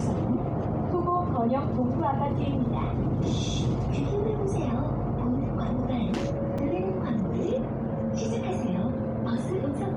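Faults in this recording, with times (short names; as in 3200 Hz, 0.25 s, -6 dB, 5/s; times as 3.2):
6.58 gap 4.6 ms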